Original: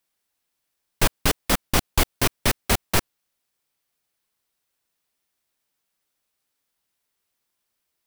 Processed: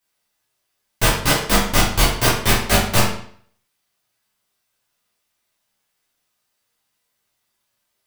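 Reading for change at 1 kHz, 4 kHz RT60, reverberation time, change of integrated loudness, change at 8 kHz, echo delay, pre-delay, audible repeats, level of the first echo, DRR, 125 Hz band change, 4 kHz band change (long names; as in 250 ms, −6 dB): +7.0 dB, 0.50 s, 0.55 s, +5.5 dB, +5.5 dB, no echo audible, 9 ms, no echo audible, no echo audible, −8.5 dB, +6.5 dB, +6.5 dB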